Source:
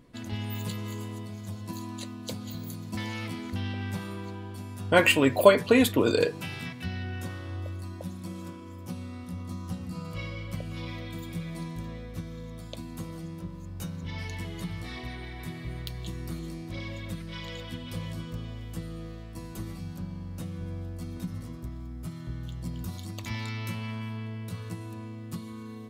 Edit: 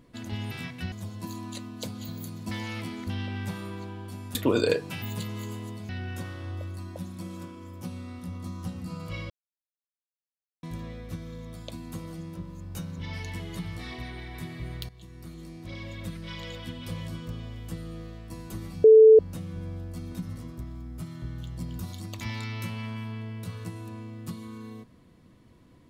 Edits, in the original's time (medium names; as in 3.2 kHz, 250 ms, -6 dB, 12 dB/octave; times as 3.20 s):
0.51–1.38 s: swap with 6.53–6.94 s
4.81–5.86 s: delete
10.35–11.68 s: mute
15.94–17.17 s: fade in, from -15.5 dB
19.89–20.24 s: bleep 439 Hz -9.5 dBFS